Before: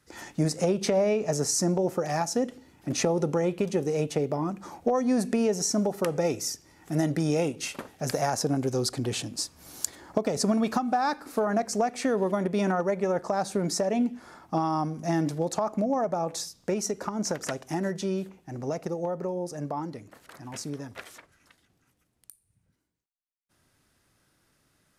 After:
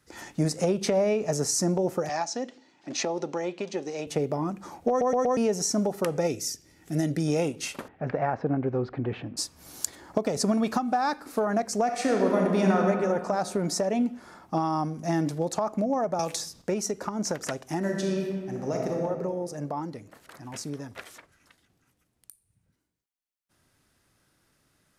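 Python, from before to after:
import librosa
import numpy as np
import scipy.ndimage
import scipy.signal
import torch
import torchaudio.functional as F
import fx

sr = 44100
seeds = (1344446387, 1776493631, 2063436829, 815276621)

y = fx.cabinet(x, sr, low_hz=340.0, low_slope=12, high_hz=6800.0, hz=(460.0, 1300.0, 4100.0), db=(-7, -4, 3), at=(2.09, 4.07))
y = fx.peak_eq(y, sr, hz=1000.0, db=-10.0, octaves=1.0, at=(6.27, 7.28))
y = fx.lowpass(y, sr, hz=2300.0, slope=24, at=(7.88, 9.37))
y = fx.reverb_throw(y, sr, start_s=11.83, length_s=0.98, rt60_s=2.3, drr_db=0.0)
y = fx.band_squash(y, sr, depth_pct=100, at=(16.19, 16.62))
y = fx.reverb_throw(y, sr, start_s=17.78, length_s=1.26, rt60_s=1.7, drr_db=0.0)
y = fx.edit(y, sr, fx.stutter_over(start_s=4.89, slice_s=0.12, count=4), tone=tone)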